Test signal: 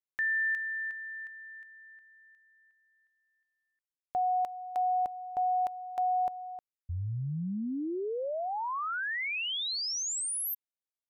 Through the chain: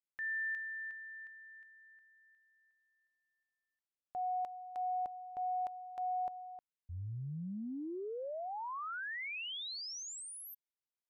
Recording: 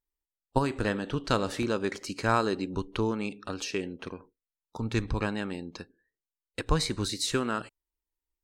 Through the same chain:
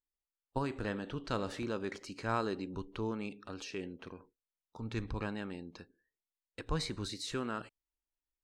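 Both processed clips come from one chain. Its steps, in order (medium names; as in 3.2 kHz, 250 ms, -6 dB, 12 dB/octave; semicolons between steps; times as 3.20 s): treble shelf 8.2 kHz -11 dB; transient shaper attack -3 dB, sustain +2 dB; trim -7.5 dB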